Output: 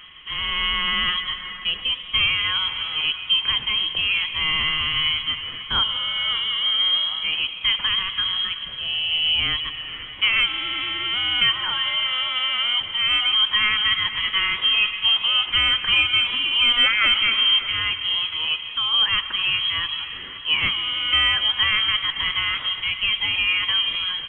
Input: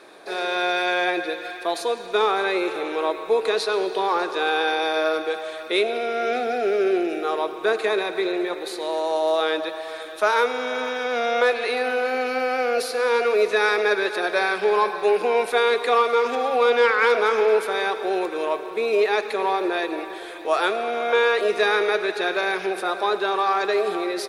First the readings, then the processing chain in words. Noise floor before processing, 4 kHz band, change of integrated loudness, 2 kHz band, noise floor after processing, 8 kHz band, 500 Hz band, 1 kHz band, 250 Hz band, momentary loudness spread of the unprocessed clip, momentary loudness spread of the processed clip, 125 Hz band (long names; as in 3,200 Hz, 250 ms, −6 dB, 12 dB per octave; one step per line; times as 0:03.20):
−35 dBFS, +15.5 dB, +3.0 dB, +2.0 dB, −35 dBFS, below −40 dB, −28.0 dB, −9.0 dB, −13.5 dB, 7 LU, 7 LU, can't be measured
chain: voice inversion scrambler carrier 3,600 Hz
backwards echo 1,118 ms −22 dB